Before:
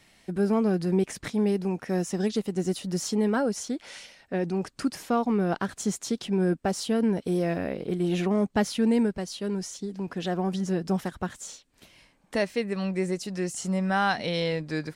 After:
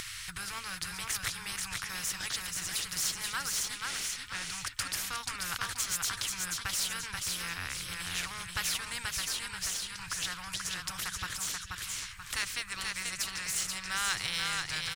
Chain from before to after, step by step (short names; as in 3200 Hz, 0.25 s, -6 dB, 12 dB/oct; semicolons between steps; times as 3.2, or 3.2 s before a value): elliptic band-stop 110–1300 Hz, stop band 40 dB; upward compressor, threshold -44 dBFS; in parallel at -10 dB: backlash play -34.5 dBFS; on the sum: feedback echo 0.483 s, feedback 27%, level -6 dB; spectral compressor 2:1